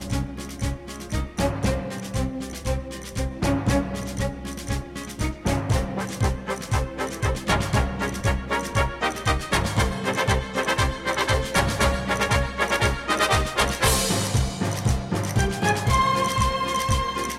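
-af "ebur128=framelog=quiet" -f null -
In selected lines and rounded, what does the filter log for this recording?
Integrated loudness:
  I:         -24.3 LUFS
  Threshold: -34.3 LUFS
Loudness range:
  LRA:         5.5 LU
  Threshold: -44.2 LUFS
  LRA low:   -27.6 LUFS
  LRA high:  -22.1 LUFS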